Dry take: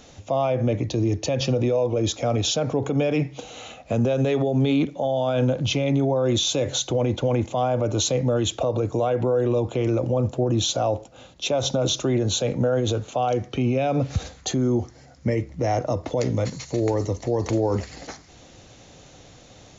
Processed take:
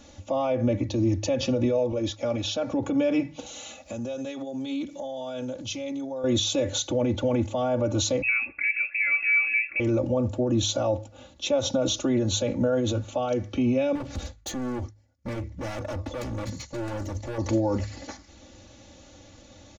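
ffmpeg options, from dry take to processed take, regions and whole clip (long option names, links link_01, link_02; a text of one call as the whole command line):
ffmpeg -i in.wav -filter_complex "[0:a]asettb=1/sr,asplit=3[link_01][link_02][link_03];[link_01]atrim=end=1.924[link_04];[link_02]atrim=start=1.92:end=2.71,asetpts=PTS-STARTPTS,afade=type=in:duration=0.004:curve=qsin,afade=type=out:start_time=0.786:duration=0.004:curve=qsin,acrossover=split=4700[link_05][link_06];[link_06]acompressor=threshold=-40dB:ratio=4:attack=1:release=60[link_07];[link_05][link_07]amix=inputs=2:normalize=0,agate=range=-33dB:threshold=-33dB:ratio=3:release=100:detection=peak,lowshelf=frequency=270:gain=-7.5[link_08];[link_03]atrim=start=2.706[link_09];[link_04][link_08]acrossfade=duration=0.004:curve1=hsin:curve2=qsin[link_10];[link_10][link_09]acrossfade=duration=0.004:curve1=qsin:curve2=hsin,asettb=1/sr,asplit=3[link_11][link_12][link_13];[link_11]atrim=end=3.464[link_14];[link_12]atrim=start=3.46:end=6.24,asetpts=PTS-STARTPTS,afade=type=in:duration=0.004:curve=qsin,afade=type=out:start_time=2.776:duration=0.004:curve=qsin,bass=frequency=250:gain=-4,treble=frequency=4000:gain=12,acompressor=threshold=-35dB:ratio=2:attack=3.2:release=140:knee=1:detection=peak[link_15];[link_13]atrim=start=6.236[link_16];[link_14][link_15]acrossfade=duration=0.004:curve1=hsin:curve2=qsin[link_17];[link_17][link_16]acrossfade=duration=0.004:curve1=qsin:curve2=hsin,asettb=1/sr,asplit=3[link_18][link_19][link_20];[link_18]atrim=end=8.224[link_21];[link_19]atrim=start=8.22:end=9.8,asetpts=PTS-STARTPTS,afade=type=in:duration=0.004:curve=qsin,afade=type=out:start_time=1.576:duration=0.004:curve=qsin,highpass=160,bandreject=frequency=1800:width=9.4,lowpass=frequency=2400:width_type=q:width=0.5098,lowpass=frequency=2400:width_type=q:width=0.6013,lowpass=frequency=2400:width_type=q:width=0.9,lowpass=frequency=2400:width_type=q:width=2.563,afreqshift=-2800[link_22];[link_20]atrim=start=9.796[link_23];[link_21][link_22]acrossfade=duration=0.004:curve1=hsin:curve2=qsin[link_24];[link_24][link_23]acrossfade=duration=0.004:curve1=qsin:curve2=hsin,asettb=1/sr,asplit=3[link_25][link_26][link_27];[link_25]atrim=end=13.954[link_28];[link_26]atrim=start=13.95:end=17.38,asetpts=PTS-STARTPTS,afade=type=in:duration=0.004:curve=qsin,afade=type=out:start_time=3.426:duration=0.004:curve=qsin,agate=range=-33dB:threshold=-37dB:ratio=3:release=100:detection=peak,lowshelf=frequency=78:gain=6.5,asoftclip=type=hard:threshold=-27.5dB[link_29];[link_27]atrim=start=17.376[link_30];[link_28][link_29]acrossfade=duration=0.004:curve1=hsin:curve2=qsin[link_31];[link_31][link_30]acrossfade=duration=0.004:curve1=qsin:curve2=hsin,equalizer=frequency=110:width_type=o:width=1.5:gain=7.5,aecho=1:1:3.5:1,bandreject=frequency=52.22:width_type=h:width=4,bandreject=frequency=104.44:width_type=h:width=4,bandreject=frequency=156.66:width_type=h:width=4,volume=-6dB" out.wav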